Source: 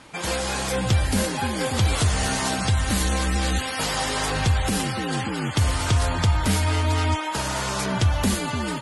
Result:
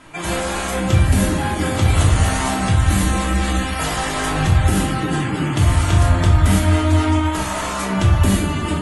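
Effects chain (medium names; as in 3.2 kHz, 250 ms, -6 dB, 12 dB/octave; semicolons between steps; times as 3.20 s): peaking EQ 4.8 kHz -7.5 dB 0.64 oct; simulated room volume 570 m³, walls furnished, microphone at 3 m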